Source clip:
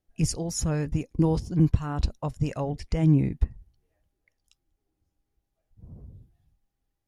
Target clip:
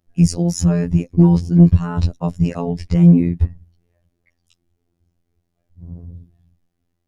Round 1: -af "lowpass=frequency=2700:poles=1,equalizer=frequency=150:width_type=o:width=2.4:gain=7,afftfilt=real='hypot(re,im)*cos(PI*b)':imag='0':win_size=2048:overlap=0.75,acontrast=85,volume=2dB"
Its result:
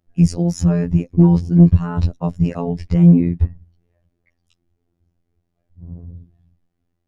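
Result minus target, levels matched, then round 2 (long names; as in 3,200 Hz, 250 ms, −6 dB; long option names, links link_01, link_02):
8,000 Hz band −6.5 dB
-af "lowpass=frequency=8400:poles=1,equalizer=frequency=150:width_type=o:width=2.4:gain=7,afftfilt=real='hypot(re,im)*cos(PI*b)':imag='0':win_size=2048:overlap=0.75,acontrast=85,volume=2dB"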